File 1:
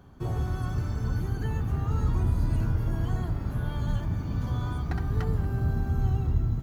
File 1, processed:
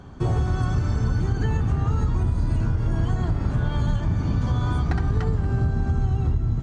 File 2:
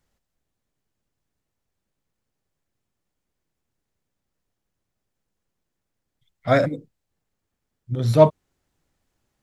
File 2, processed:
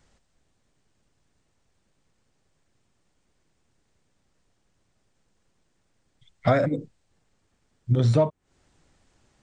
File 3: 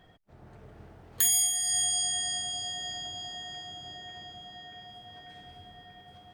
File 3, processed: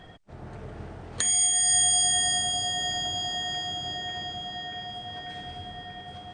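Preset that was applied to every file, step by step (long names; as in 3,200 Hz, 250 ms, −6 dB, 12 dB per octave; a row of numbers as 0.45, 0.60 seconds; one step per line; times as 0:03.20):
dynamic equaliser 4,800 Hz, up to −6 dB, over −42 dBFS, Q 0.84
downward compressor 20 to 1, threshold −27 dBFS
linear-phase brick-wall low-pass 9,300 Hz
loudness normalisation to −24 LKFS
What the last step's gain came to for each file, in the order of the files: +9.5, +10.0, +10.5 decibels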